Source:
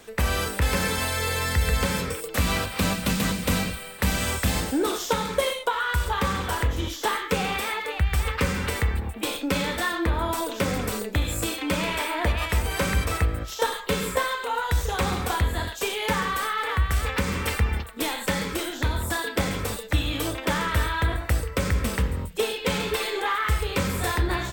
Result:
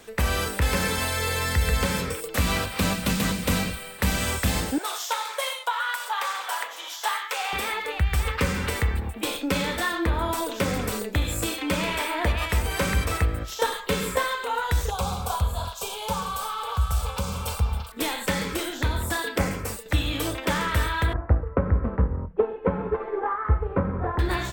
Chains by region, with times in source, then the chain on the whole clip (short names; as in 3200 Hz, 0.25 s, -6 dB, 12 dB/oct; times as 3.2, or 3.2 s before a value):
4.78–7.53 Chebyshev high-pass 710 Hz, order 3 + echo 0.412 s -21 dB
14.9–17.92 fixed phaser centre 780 Hz, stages 4 + delay with a stepping band-pass 0.333 s, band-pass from 1400 Hz, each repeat 1.4 oct, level -6 dB
19.38–19.86 bell 3600 Hz -12 dB 0.42 oct + three-band expander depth 100%
21.13–24.19 LPF 1300 Hz 24 dB/oct + transient shaper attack +5 dB, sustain -2 dB
whole clip: dry